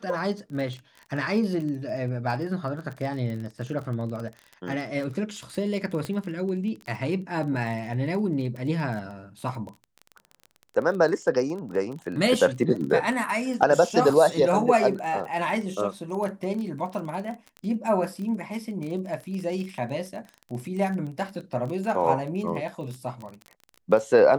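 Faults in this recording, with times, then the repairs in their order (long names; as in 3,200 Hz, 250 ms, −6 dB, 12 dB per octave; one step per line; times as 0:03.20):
surface crackle 22 per second −32 dBFS
0:06.05: click −18 dBFS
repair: click removal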